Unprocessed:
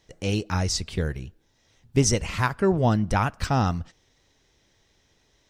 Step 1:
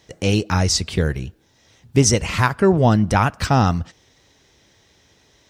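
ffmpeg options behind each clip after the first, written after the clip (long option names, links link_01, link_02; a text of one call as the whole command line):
ffmpeg -i in.wav -filter_complex "[0:a]asplit=2[link_01][link_02];[link_02]alimiter=limit=-18dB:level=0:latency=1:release=329,volume=0dB[link_03];[link_01][link_03]amix=inputs=2:normalize=0,highpass=61,volume=3dB" out.wav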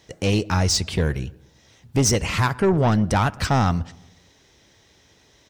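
ffmpeg -i in.wav -filter_complex "[0:a]asoftclip=type=tanh:threshold=-12.5dB,asplit=2[link_01][link_02];[link_02]adelay=119,lowpass=frequency=1300:poles=1,volume=-22dB,asplit=2[link_03][link_04];[link_04]adelay=119,lowpass=frequency=1300:poles=1,volume=0.52,asplit=2[link_05][link_06];[link_06]adelay=119,lowpass=frequency=1300:poles=1,volume=0.52,asplit=2[link_07][link_08];[link_08]adelay=119,lowpass=frequency=1300:poles=1,volume=0.52[link_09];[link_01][link_03][link_05][link_07][link_09]amix=inputs=5:normalize=0" out.wav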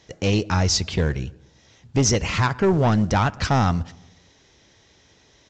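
ffmpeg -i in.wav -ar 16000 -c:a pcm_mulaw out.wav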